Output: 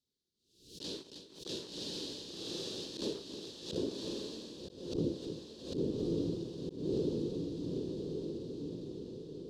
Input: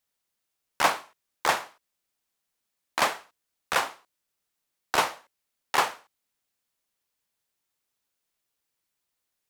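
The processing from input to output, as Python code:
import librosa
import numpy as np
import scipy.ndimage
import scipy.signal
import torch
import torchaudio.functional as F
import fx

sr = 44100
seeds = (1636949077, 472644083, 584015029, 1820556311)

y = fx.riaa(x, sr, side='playback')
y = 10.0 ** (-22.5 / 20.0) * np.tanh(y / 10.0 ** (-22.5 / 20.0))
y = scipy.signal.sosfilt(scipy.signal.ellip(3, 1.0, 40, [390.0, 4000.0], 'bandstop', fs=sr, output='sos'), y)
y = fx.leveller(y, sr, passes=1)
y = y + 10.0 ** (-21.5 / 20.0) * np.pad(y, (int(315 * sr / 1000.0), 0))[:len(y)]
y = fx.filter_sweep_bandpass(y, sr, from_hz=1700.0, to_hz=300.0, start_s=2.57, end_s=5.07, q=0.74)
y = fx.echo_diffused(y, sr, ms=1138, feedback_pct=52, wet_db=-9.0)
y = fx.rider(y, sr, range_db=5, speed_s=2.0)
y = fx.auto_swell(y, sr, attack_ms=274.0)
y = fx.pre_swell(y, sr, db_per_s=93.0)
y = y * librosa.db_to_amplitude(15.5)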